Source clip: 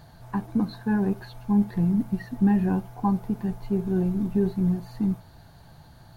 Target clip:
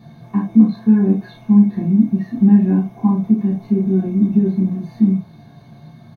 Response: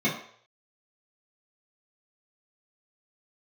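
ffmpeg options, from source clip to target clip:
-filter_complex "[0:a]asplit=2[s0][s1];[s1]acompressor=threshold=0.0355:ratio=6,volume=1[s2];[s0][s2]amix=inputs=2:normalize=0,asplit=2[s3][s4];[s4]adelay=31,volume=0.473[s5];[s3][s5]amix=inputs=2:normalize=0[s6];[1:a]atrim=start_sample=2205,atrim=end_sample=3528[s7];[s6][s7]afir=irnorm=-1:irlink=0,volume=0.211"

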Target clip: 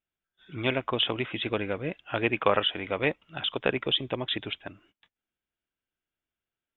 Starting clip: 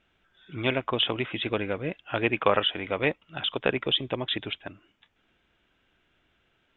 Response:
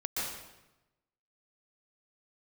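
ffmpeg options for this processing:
-af "agate=range=0.0708:threshold=0.001:ratio=16:detection=peak,volume=0.891"

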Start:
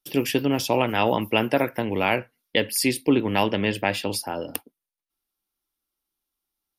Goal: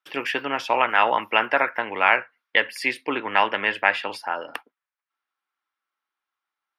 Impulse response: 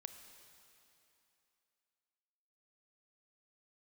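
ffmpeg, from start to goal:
-af "bandpass=f=1300:t=q:w=0.97:csg=0,equalizer=f=1600:t=o:w=2:g=10.5,volume=1.12"

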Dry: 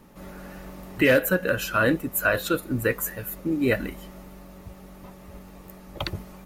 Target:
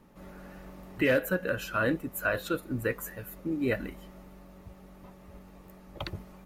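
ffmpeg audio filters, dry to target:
-af "highshelf=f=4100:g=-5.5,volume=0.501"

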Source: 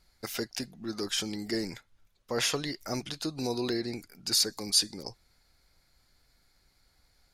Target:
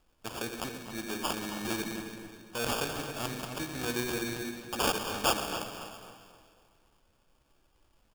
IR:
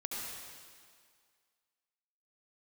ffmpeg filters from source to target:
-filter_complex "[0:a]bandreject=f=50:t=h:w=6,bandreject=f=100:t=h:w=6,bandreject=f=150:t=h:w=6,bandreject=f=200:t=h:w=6,bandreject=f=250:t=h:w=6,bandreject=f=300:t=h:w=6,bandreject=f=350:t=h:w=6,bandreject=f=400:t=h:w=6,bandreject=f=450:t=h:w=6,bandreject=f=500:t=h:w=6,asplit=2[s0][s1];[1:a]atrim=start_sample=2205,lowshelf=f=340:g=8[s2];[s1][s2]afir=irnorm=-1:irlink=0,volume=0.631[s3];[s0][s3]amix=inputs=2:normalize=0,acrusher=samples=22:mix=1:aa=0.000001,tiltshelf=f=1400:g=-4.5,atempo=0.9,asplit=2[s4][s5];[s5]adelay=267,lowpass=f=3700:p=1,volume=0.335,asplit=2[s6][s7];[s7]adelay=267,lowpass=f=3700:p=1,volume=0.33,asplit=2[s8][s9];[s9]adelay=267,lowpass=f=3700:p=1,volume=0.33,asplit=2[s10][s11];[s11]adelay=267,lowpass=f=3700:p=1,volume=0.33[s12];[s4][s6][s8][s10][s12]amix=inputs=5:normalize=0,volume=0.596"

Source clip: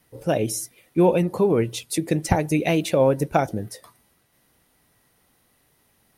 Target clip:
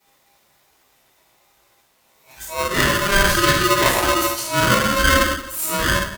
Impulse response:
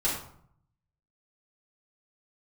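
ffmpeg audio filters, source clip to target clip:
-filter_complex "[0:a]areverse,lowpass=6900,equalizer=f=1200:w=0.85:g=3,flanger=delay=19:depth=6.9:speed=1.2,aemphasis=mode=production:type=75kf,asetrate=64194,aresample=44100,atempo=0.686977,aecho=1:1:55|73:0.316|0.316[s0];[1:a]atrim=start_sample=2205,asetrate=34839,aresample=44100[s1];[s0][s1]afir=irnorm=-1:irlink=0,aeval=exprs='val(0)*sgn(sin(2*PI*800*n/s))':c=same,volume=0.473"

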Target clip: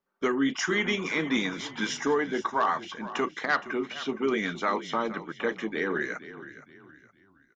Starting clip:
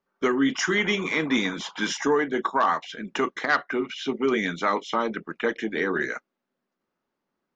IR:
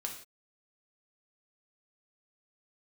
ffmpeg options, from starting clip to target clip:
-filter_complex "[0:a]asplit=4[s0][s1][s2][s3];[s1]adelay=467,afreqshift=-32,volume=0.188[s4];[s2]adelay=934,afreqshift=-64,volume=0.0676[s5];[s3]adelay=1401,afreqshift=-96,volume=0.0245[s6];[s0][s4][s5][s6]amix=inputs=4:normalize=0,volume=0.668"

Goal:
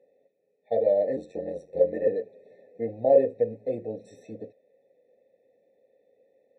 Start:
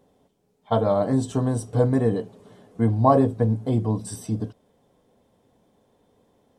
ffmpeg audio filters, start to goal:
-filter_complex "[0:a]asettb=1/sr,asplit=3[s0][s1][s2];[s0]atrim=end=1.164[s3];[s1]atrim=start=1.16:end=2.07,asetpts=PTS-STARTPTS,afade=t=in:d=0.004:c=qsin,afade=t=out:st=0.906:d=0.004:c=qsin,aeval=exprs='val(0)*sin(2*PI*45*n/s)':c=same[s4];[s2]atrim=start=2.066[s5];[s3][s4]acrossfade=d=0.004:c1=hsin:c2=qsin[s6];[s6][s5]acrossfade=d=0.004:c1=qsin:c2=hsin,asplit=3[s7][s8][s9];[s7]bandpass=f=530:t=q:w=8,volume=1[s10];[s8]bandpass=f=1840:t=q:w=8,volume=0.501[s11];[s9]bandpass=f=2480:t=q:w=8,volume=0.355[s12];[s10][s11][s12]amix=inputs=3:normalize=0,afftfilt=real='re*eq(mod(floor(b*sr/1024/880),2),0)':imag='im*eq(mod(floor(b*sr/1024/880),2),0)':win_size=1024:overlap=0.75,volume=2.24"

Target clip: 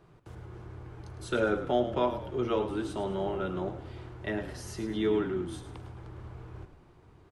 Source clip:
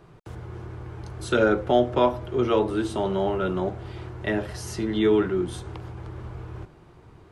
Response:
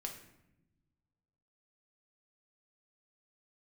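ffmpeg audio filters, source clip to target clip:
-filter_complex "[0:a]asplit=5[s0][s1][s2][s3][s4];[s1]adelay=106,afreqshift=-33,volume=0.282[s5];[s2]adelay=212,afreqshift=-66,volume=0.116[s6];[s3]adelay=318,afreqshift=-99,volume=0.0473[s7];[s4]adelay=424,afreqshift=-132,volume=0.0195[s8];[s0][s5][s6][s7][s8]amix=inputs=5:normalize=0,volume=0.422"

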